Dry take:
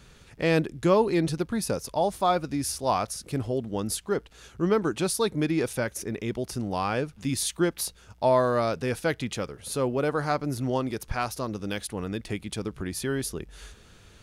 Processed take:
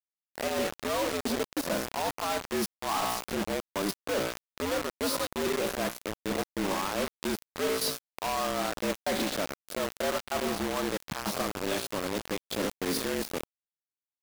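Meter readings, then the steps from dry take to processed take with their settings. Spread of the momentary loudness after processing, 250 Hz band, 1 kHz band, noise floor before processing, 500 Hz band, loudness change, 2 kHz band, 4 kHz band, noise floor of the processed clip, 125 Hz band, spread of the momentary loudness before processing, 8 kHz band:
5 LU, -5.0 dB, -3.5 dB, -54 dBFS, -4.5 dB, -3.5 dB, -0.5 dB, +2.0 dB, under -85 dBFS, -12.0 dB, 9 LU, -2.5 dB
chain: reverse spectral sustain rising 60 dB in 0.34 s; trance gate "x.x....." 96 bpm -12 dB; treble shelf 3 kHz +6.5 dB; feedback comb 60 Hz, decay 1 s, harmonics all, mix 60%; expander -53 dBFS; graphic EQ 125/250/500/1000/4000/8000 Hz +10/+6/+8/+10/+8/-12 dB; reverse; compression 20:1, threshold -35 dBFS, peak gain reduction 22.5 dB; reverse; frequency shift +88 Hz; companded quantiser 2-bit

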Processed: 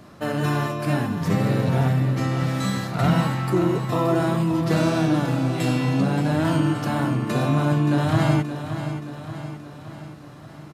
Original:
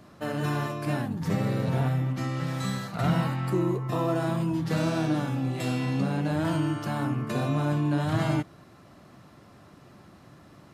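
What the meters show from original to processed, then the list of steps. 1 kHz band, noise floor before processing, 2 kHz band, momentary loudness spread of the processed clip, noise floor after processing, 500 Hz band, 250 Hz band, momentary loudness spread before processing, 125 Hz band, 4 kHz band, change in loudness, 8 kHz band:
+6.0 dB, -53 dBFS, +6.0 dB, 14 LU, -42 dBFS, +6.0 dB, +6.0 dB, 4 LU, +6.0 dB, +6.0 dB, +5.5 dB, +6.0 dB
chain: feedback delay 575 ms, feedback 55%, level -10 dB; trim +5.5 dB

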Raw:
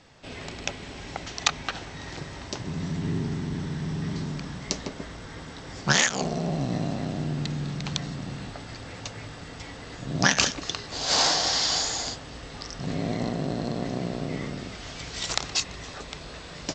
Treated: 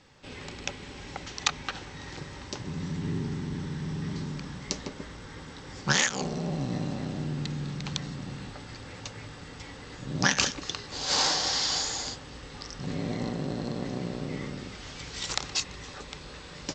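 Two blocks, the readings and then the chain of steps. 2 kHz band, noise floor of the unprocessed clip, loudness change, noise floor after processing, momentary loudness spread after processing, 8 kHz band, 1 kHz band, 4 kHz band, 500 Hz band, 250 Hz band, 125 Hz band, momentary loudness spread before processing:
-3.0 dB, -42 dBFS, -3.0 dB, -45 dBFS, 18 LU, -3.0 dB, -3.5 dB, -3.0 dB, -4.0 dB, -3.0 dB, -3.0 dB, 18 LU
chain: Butterworth band-stop 670 Hz, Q 6.9; trim -3 dB

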